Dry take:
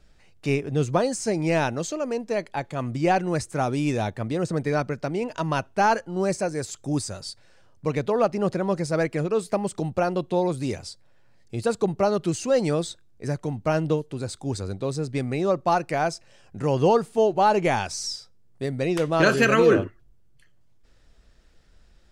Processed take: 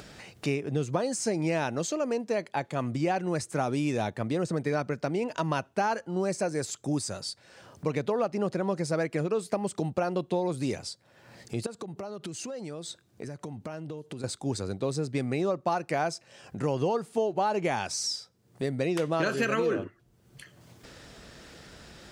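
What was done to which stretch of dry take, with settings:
0:11.66–0:14.24: downward compressor 10 to 1, threshold −35 dBFS
whole clip: downward compressor 6 to 1, threshold −24 dBFS; high-pass filter 120 Hz; upward compression, threshold −34 dBFS

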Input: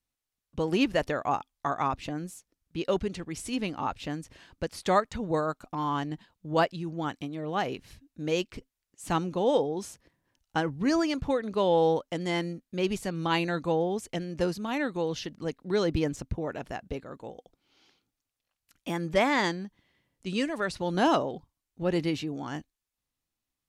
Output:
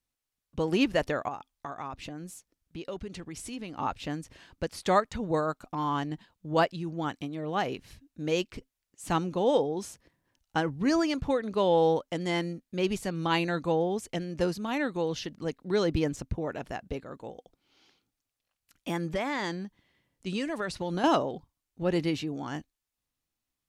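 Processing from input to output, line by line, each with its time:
0:01.28–0:03.79: downward compressor 2.5 to 1, threshold −38 dBFS
0:19.05–0:21.04: downward compressor, threshold −26 dBFS

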